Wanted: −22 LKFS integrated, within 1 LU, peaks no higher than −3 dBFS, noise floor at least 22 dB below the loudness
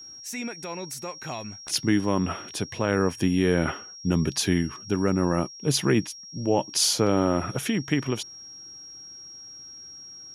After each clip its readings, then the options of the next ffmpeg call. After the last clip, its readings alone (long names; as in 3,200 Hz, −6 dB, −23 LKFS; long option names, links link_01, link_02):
interfering tone 5,600 Hz; level of the tone −41 dBFS; integrated loudness −26.0 LKFS; sample peak −10.0 dBFS; target loudness −22.0 LKFS
→ -af "bandreject=frequency=5600:width=30"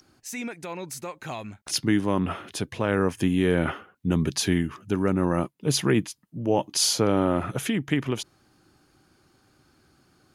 interfering tone none found; integrated loudness −26.0 LKFS; sample peak −10.0 dBFS; target loudness −22.0 LKFS
→ -af "volume=4dB"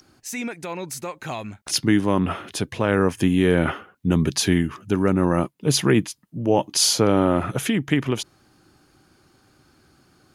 integrated loudness −22.0 LKFS; sample peak −6.0 dBFS; background noise floor −61 dBFS